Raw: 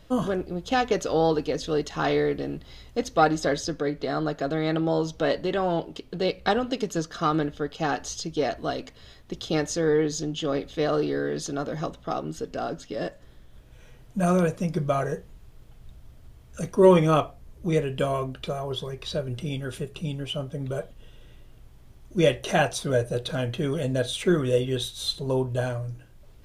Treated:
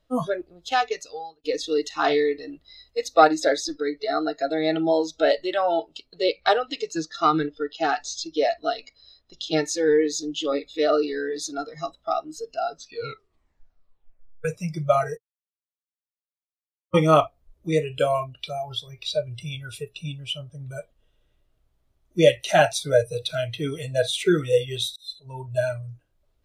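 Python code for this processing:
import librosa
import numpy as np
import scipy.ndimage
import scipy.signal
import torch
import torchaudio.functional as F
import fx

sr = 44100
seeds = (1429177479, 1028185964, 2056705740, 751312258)

y = fx.lowpass(x, sr, hz=7100.0, slope=12, at=(6.23, 9.65))
y = fx.edit(y, sr, fx.fade_out_span(start_s=0.63, length_s=0.81),
    fx.tape_stop(start_s=12.71, length_s=1.74),
    fx.silence(start_s=15.17, length_s=1.77),
    fx.fade_in_span(start_s=24.96, length_s=0.62), tone=tone)
y = fx.noise_reduce_blind(y, sr, reduce_db=21)
y = fx.graphic_eq_31(y, sr, hz=(125, 200, 630, 1250, 4000), db=(-6, -6, 5, 3, 3))
y = F.gain(torch.from_numpy(y), 3.0).numpy()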